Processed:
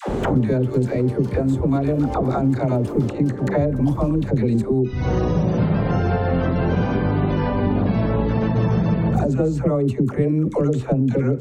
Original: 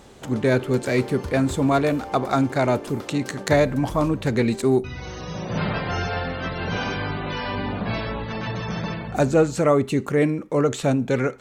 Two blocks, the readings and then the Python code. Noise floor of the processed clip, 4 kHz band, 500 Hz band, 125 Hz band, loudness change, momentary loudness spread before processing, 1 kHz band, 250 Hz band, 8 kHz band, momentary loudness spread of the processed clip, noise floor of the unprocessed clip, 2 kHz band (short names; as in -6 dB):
-29 dBFS, -8.0 dB, 0.0 dB, +7.0 dB, +2.5 dB, 9 LU, -1.0 dB, +4.0 dB, under -10 dB, 2 LU, -37 dBFS, -5.5 dB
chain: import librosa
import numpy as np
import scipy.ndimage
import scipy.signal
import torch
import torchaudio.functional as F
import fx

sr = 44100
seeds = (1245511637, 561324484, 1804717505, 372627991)

y = fx.recorder_agc(x, sr, target_db=-11.5, rise_db_per_s=49.0, max_gain_db=30)
y = fx.tilt_shelf(y, sr, db=9.5, hz=910.0)
y = fx.dispersion(y, sr, late='lows', ms=89.0, hz=540.0)
y = fx.band_squash(y, sr, depth_pct=100)
y = F.gain(torch.from_numpy(y), -7.5).numpy()